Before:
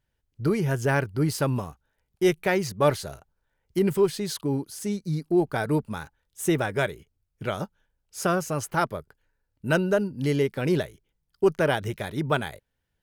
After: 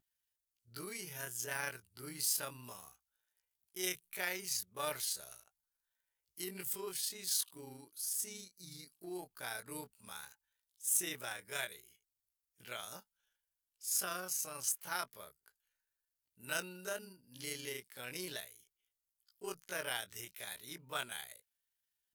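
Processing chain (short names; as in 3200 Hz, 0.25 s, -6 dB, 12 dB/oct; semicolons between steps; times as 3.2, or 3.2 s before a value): pre-emphasis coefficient 0.97; vibrato 1.5 Hz 31 cents; granular stretch 1.7×, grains 80 ms; gain +1 dB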